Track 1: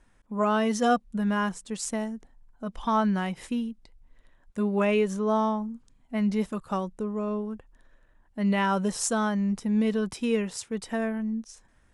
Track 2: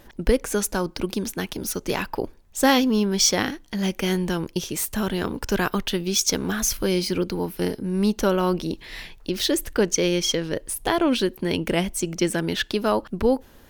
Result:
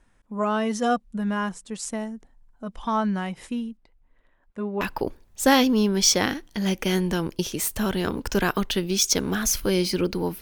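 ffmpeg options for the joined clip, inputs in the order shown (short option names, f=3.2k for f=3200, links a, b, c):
-filter_complex "[0:a]asettb=1/sr,asplit=3[a][b][c];[a]atrim=end=3.774[d];[b]atrim=start=3.77:end=4.81,asetpts=PTS-STARTPTS,afade=t=in:d=0.004:c=qsin,afade=t=out:st=1.036:d=0.004:c=qsin,bass=f=250:g=-6,treble=f=4k:g=-14[e];[c]atrim=start=4.806[f];[d][e]acrossfade=d=0.004:c1=hsin:c2=qsin[g];[g][f]acrossfade=d=0.004:c1=qsin:c2=hsin,apad=whole_dur=10.41,atrim=end=10.41,atrim=end=4.812[h];[1:a]atrim=start=1.978:end=7.58[i];[h][i]acrossfade=d=0.004:c1=hsin:c2=hsin"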